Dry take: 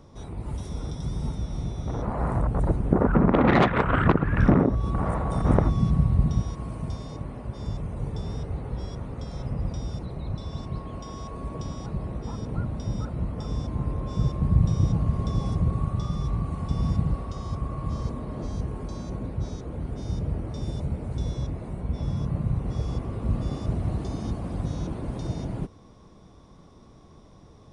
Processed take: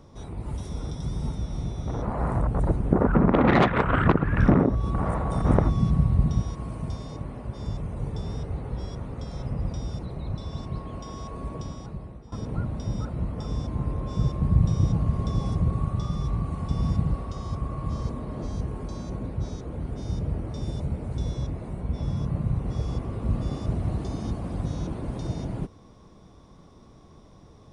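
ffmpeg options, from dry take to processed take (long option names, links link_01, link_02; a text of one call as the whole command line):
ffmpeg -i in.wav -filter_complex "[0:a]asplit=2[link_01][link_02];[link_01]atrim=end=12.32,asetpts=PTS-STARTPTS,afade=type=out:start_time=11.48:duration=0.84:silence=0.149624[link_03];[link_02]atrim=start=12.32,asetpts=PTS-STARTPTS,afade=type=in:duration=0.004:curve=hsin:silence=0.149624[link_04];[link_03][link_04]concat=n=2:v=0:a=1" out.wav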